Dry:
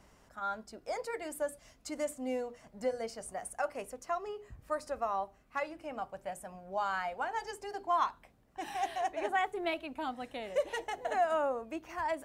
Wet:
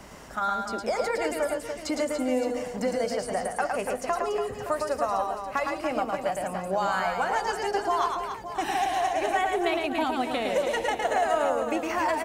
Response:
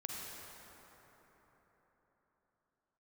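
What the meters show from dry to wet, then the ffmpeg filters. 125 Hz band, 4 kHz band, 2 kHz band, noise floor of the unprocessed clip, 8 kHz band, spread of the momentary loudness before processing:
+13.0 dB, +11.0 dB, +9.0 dB, -64 dBFS, +9.0 dB, 11 LU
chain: -filter_complex "[0:a]apsyclip=21.5dB,acrossover=split=140|4400[a][b][c];[a]acompressor=threshold=-48dB:ratio=4[d];[b]acompressor=threshold=-21dB:ratio=4[e];[c]acompressor=threshold=-40dB:ratio=4[f];[d][e][f]amix=inputs=3:normalize=0,aecho=1:1:110|286|567.6|1018|1739:0.631|0.398|0.251|0.158|0.1,volume=-5.5dB"

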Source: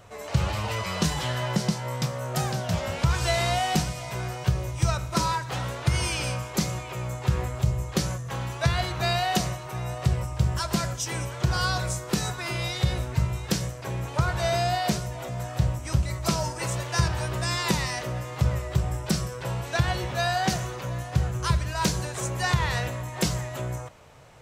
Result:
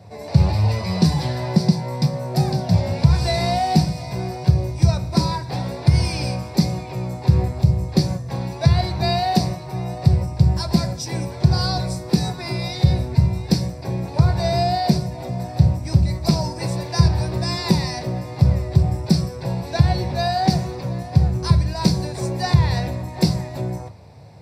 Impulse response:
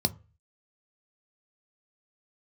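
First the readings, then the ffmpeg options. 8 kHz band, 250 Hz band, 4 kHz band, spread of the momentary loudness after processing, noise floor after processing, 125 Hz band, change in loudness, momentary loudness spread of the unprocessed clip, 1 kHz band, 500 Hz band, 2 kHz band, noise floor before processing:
-3.0 dB, +10.0 dB, +3.0 dB, 9 LU, -34 dBFS, +8.5 dB, +7.0 dB, 7 LU, +4.0 dB, +5.0 dB, -3.0 dB, -38 dBFS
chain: -filter_complex "[1:a]atrim=start_sample=2205[a];[0:a][a]afir=irnorm=-1:irlink=0,volume=-7dB"

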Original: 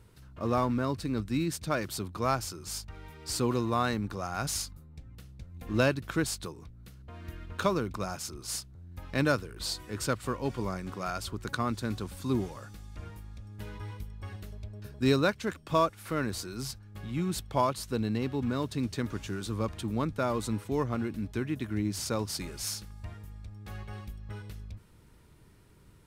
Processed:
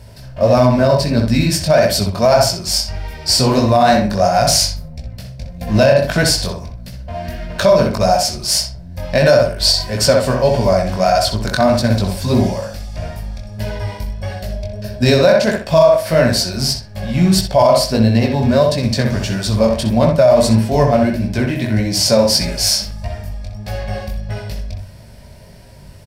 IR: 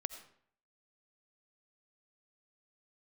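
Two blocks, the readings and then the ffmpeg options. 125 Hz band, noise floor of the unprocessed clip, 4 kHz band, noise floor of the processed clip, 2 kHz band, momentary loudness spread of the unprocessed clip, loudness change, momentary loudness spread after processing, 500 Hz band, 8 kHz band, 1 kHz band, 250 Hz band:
+17.0 dB, -56 dBFS, +21.5 dB, -37 dBFS, +14.5 dB, 18 LU, +18.0 dB, 16 LU, +20.5 dB, +17.5 dB, +16.0 dB, +15.0 dB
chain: -filter_complex "[0:a]flanger=delay=16.5:depth=6.3:speed=1.6,superequalizer=6b=0.355:7b=0.631:8b=3.16:10b=0.398:14b=2.24,asplit=2[a][b];[b]adelay=63,lowpass=f=2.7k:p=1,volume=-4dB,asplit=2[c][d];[d]adelay=63,lowpass=f=2.7k:p=1,volume=0.31,asplit=2[e][f];[f]adelay=63,lowpass=f=2.7k:p=1,volume=0.31,asplit=2[g][h];[h]adelay=63,lowpass=f=2.7k:p=1,volume=0.31[i];[c][e][g][i]amix=inputs=4:normalize=0[j];[a][j]amix=inputs=2:normalize=0,alimiter=level_in=20.5dB:limit=-1dB:release=50:level=0:latency=1,volume=-1dB"

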